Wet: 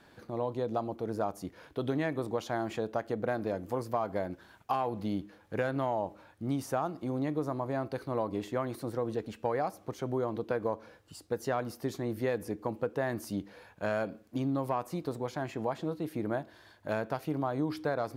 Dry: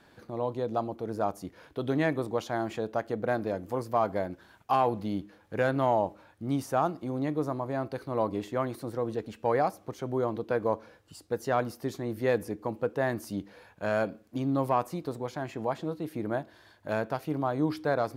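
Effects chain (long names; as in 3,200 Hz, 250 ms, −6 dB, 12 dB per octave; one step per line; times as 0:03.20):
downward compressor, threshold −27 dBFS, peak gain reduction 7.5 dB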